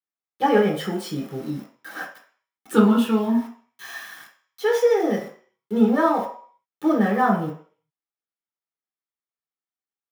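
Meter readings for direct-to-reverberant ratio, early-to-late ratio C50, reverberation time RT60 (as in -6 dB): -3.0 dB, 7.0 dB, 0.50 s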